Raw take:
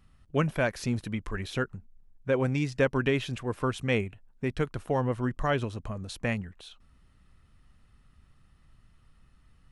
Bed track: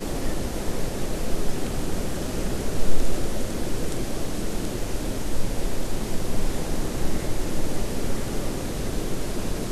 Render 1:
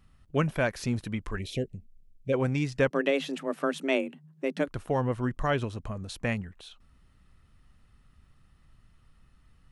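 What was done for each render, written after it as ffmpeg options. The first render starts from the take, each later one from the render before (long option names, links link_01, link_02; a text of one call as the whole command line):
ffmpeg -i in.wav -filter_complex "[0:a]asplit=3[link_01][link_02][link_03];[link_01]afade=type=out:start_time=1.38:duration=0.02[link_04];[link_02]asuperstop=centerf=1200:order=8:qfactor=0.83,afade=type=in:start_time=1.38:duration=0.02,afade=type=out:start_time=2.32:duration=0.02[link_05];[link_03]afade=type=in:start_time=2.32:duration=0.02[link_06];[link_04][link_05][link_06]amix=inputs=3:normalize=0,asettb=1/sr,asplit=3[link_07][link_08][link_09];[link_07]atrim=end=2.904[link_10];[link_08]atrim=start=2.9:end=4.68,asetpts=PTS-STARTPTS,afade=type=in:duration=0.004:curve=qsin,afade=type=out:start_time=1.776:duration=0.004:curve=qsin,afreqshift=140[link_11];[link_09]atrim=start=4.676[link_12];[link_10][link_11]acrossfade=duration=0.004:curve1=hsin:curve2=qsin[link_13];[link_13][link_12]acrossfade=duration=0.004:curve1=qsin:curve2=hsin" out.wav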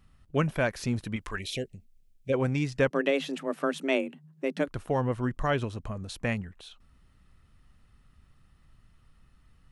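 ffmpeg -i in.wav -filter_complex "[0:a]asettb=1/sr,asplit=3[link_01][link_02][link_03];[link_01]atrim=end=1.164[link_04];[link_02]atrim=start=1.16:end=2.3,asetpts=PTS-STARTPTS,afade=type=in:duration=0.004:curve=qsin,afade=type=out:start_time=1.136:duration=0.004:curve=qsin,tiltshelf=frequency=680:gain=-5.5[link_05];[link_03]atrim=start=2.296[link_06];[link_04][link_05]acrossfade=duration=0.004:curve1=hsin:curve2=qsin[link_07];[link_07][link_06]acrossfade=duration=0.004:curve1=qsin:curve2=hsin" out.wav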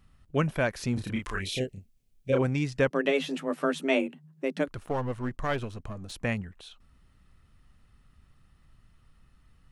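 ffmpeg -i in.wav -filter_complex "[0:a]asettb=1/sr,asplit=3[link_01][link_02][link_03];[link_01]atrim=end=0.944[link_04];[link_02]atrim=start=0.94:end=2.42,asetpts=PTS-STARTPTS,afade=type=in:duration=0.004:curve=qsin,afade=type=out:start_time=1.476:duration=0.004:curve=qsin,asplit=2[link_05][link_06];[link_06]adelay=31,volume=-2dB[link_07];[link_05][link_07]amix=inputs=2:normalize=0,atrim=end_sample=65268[link_08];[link_03]atrim=start=2.416[link_09];[link_04][link_08]acrossfade=duration=0.004:curve1=hsin:curve2=qsin[link_10];[link_10][link_09]acrossfade=duration=0.004:curve1=qsin:curve2=hsin,asettb=1/sr,asplit=3[link_11][link_12][link_13];[link_11]atrim=end=3.044[link_14];[link_12]atrim=start=3.04:end=4.07,asetpts=PTS-STARTPTS,afade=type=in:duration=0.004:curve=qsin,afade=type=out:start_time=1.026:duration=0.004:curve=qsin,asplit=2[link_15][link_16];[link_16]adelay=12,volume=-5dB[link_17];[link_15][link_17]amix=inputs=2:normalize=0,atrim=end_sample=45423[link_18];[link_13]atrim=start=4.066[link_19];[link_14][link_18]acrossfade=duration=0.004:curve1=hsin:curve2=qsin[link_20];[link_20][link_19]acrossfade=duration=0.004:curve1=qsin:curve2=hsin,asettb=1/sr,asplit=3[link_21][link_22][link_23];[link_21]atrim=end=4.744[link_24];[link_22]atrim=start=4.74:end=6.12,asetpts=PTS-STARTPTS,afade=type=in:duration=0.004:curve=qsin,afade=type=out:start_time=1.376:duration=0.004:curve=qsin,aeval=exprs='if(lt(val(0),0),0.447*val(0),val(0))':channel_layout=same[link_25];[link_23]atrim=start=6.116[link_26];[link_24][link_25]acrossfade=duration=0.004:curve1=hsin:curve2=qsin[link_27];[link_27][link_26]acrossfade=duration=0.004:curve1=qsin:curve2=hsin" out.wav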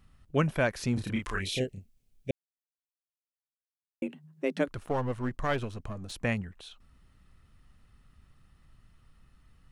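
ffmpeg -i in.wav -filter_complex "[0:a]asplit=3[link_01][link_02][link_03];[link_01]atrim=end=2.31,asetpts=PTS-STARTPTS,afade=type=out:start_time=2.306:duration=0.004:curve=hsin[link_04];[link_02]atrim=start=2.31:end=4.02,asetpts=PTS-STARTPTS,volume=0[link_05];[link_03]atrim=start=4.02,asetpts=PTS-STARTPTS,afade=type=in:duration=0.004:curve=hsin[link_06];[link_04][link_05][link_06]concat=n=3:v=0:a=1" out.wav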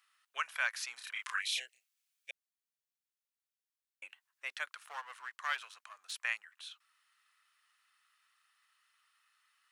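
ffmpeg -i in.wav -af "highpass=frequency=1200:width=0.5412,highpass=frequency=1200:width=1.3066" out.wav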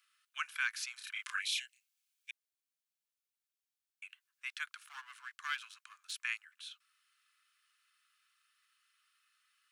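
ffmpeg -i in.wav -af "highpass=frequency=1300:width=0.5412,highpass=frequency=1300:width=1.3066,bandreject=frequency=1900:width=10" out.wav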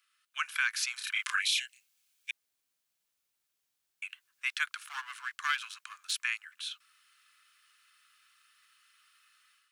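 ffmpeg -i in.wav -af "dynaudnorm=framelen=280:gausssize=3:maxgain=9.5dB,alimiter=limit=-18.5dB:level=0:latency=1:release=144" out.wav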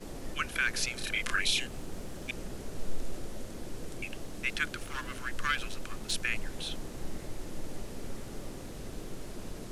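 ffmpeg -i in.wav -i bed.wav -filter_complex "[1:a]volume=-14dB[link_01];[0:a][link_01]amix=inputs=2:normalize=0" out.wav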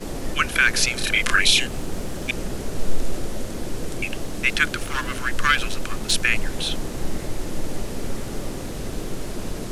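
ffmpeg -i in.wav -af "volume=12dB" out.wav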